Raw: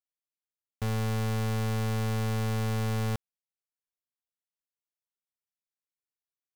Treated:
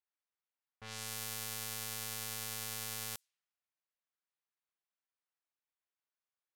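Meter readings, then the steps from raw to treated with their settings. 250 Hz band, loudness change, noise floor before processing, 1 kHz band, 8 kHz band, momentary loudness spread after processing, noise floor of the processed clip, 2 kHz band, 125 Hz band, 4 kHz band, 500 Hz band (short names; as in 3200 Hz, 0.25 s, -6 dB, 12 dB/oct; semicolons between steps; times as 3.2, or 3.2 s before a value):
-22.5 dB, -9.0 dB, under -85 dBFS, -12.0 dB, +5.0 dB, 6 LU, under -85 dBFS, -6.5 dB, -24.5 dB, -0.5 dB, -17.5 dB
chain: pre-emphasis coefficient 0.97; added noise violet -74 dBFS; low-pass opened by the level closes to 1100 Hz, open at -44.5 dBFS; gain +5 dB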